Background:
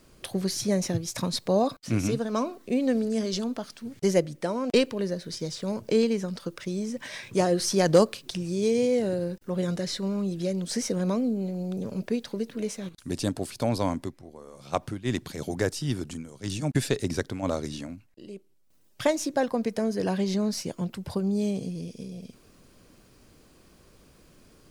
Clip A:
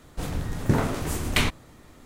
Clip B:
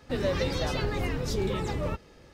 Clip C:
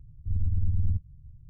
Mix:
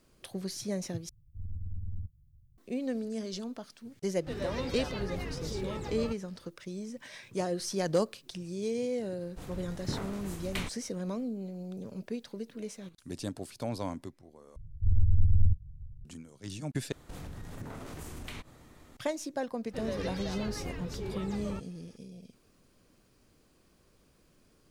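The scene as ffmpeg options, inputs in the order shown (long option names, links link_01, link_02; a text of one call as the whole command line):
ffmpeg -i bed.wav -i cue0.wav -i cue1.wav -i cue2.wav -filter_complex "[3:a]asplit=2[link_01][link_02];[2:a]asplit=2[link_03][link_04];[1:a]asplit=2[link_05][link_06];[0:a]volume=-9dB[link_07];[link_01]aemphasis=mode=production:type=50fm[link_08];[link_02]lowshelf=frequency=160:gain=12[link_09];[link_06]acompressor=threshold=-34dB:ratio=6:attack=3.2:release=140:knee=1:detection=peak[link_10];[link_07]asplit=4[link_11][link_12][link_13][link_14];[link_11]atrim=end=1.094[link_15];[link_08]atrim=end=1.49,asetpts=PTS-STARTPTS,volume=-12dB[link_16];[link_12]atrim=start=2.576:end=14.564[link_17];[link_09]atrim=end=1.49,asetpts=PTS-STARTPTS,volume=-7.5dB[link_18];[link_13]atrim=start=16.046:end=16.924[link_19];[link_10]atrim=end=2.05,asetpts=PTS-STARTPTS,volume=-5dB[link_20];[link_14]atrim=start=18.966[link_21];[link_03]atrim=end=2.33,asetpts=PTS-STARTPTS,volume=-8dB,afade=type=in:duration=0.004:curve=hsin,afade=type=out:start_time=2.326:duration=0.004:curve=hsin,adelay=183897S[link_22];[link_05]atrim=end=2.05,asetpts=PTS-STARTPTS,volume=-13.5dB,afade=type=in:duration=0.004:curve=hsin,afade=type=out:start_time=2.046:duration=0.004:curve=hsin,adelay=9190[link_23];[link_04]atrim=end=2.33,asetpts=PTS-STARTPTS,volume=-9.5dB,afade=type=in:duration=0.004:curve=hsin,afade=type=out:start_time=2.326:duration=0.004:curve=hsin,adelay=19640[link_24];[link_15][link_16]acrossfade=duration=0.004:curve1=hsin:curve2=hsin[link_25];[link_25][link_17]acrossfade=duration=0.004:curve1=hsin:curve2=hsin[link_26];[link_26][link_18]acrossfade=duration=0.004:curve1=hsin:curve2=hsin[link_27];[link_27][link_19]acrossfade=duration=0.004:curve1=hsin:curve2=hsin[link_28];[link_28][link_20]acrossfade=duration=0.004:curve1=hsin:curve2=hsin[link_29];[link_29][link_21]acrossfade=duration=0.004:curve1=hsin:curve2=hsin[link_30];[link_30][link_22][link_23][link_24]amix=inputs=4:normalize=0" out.wav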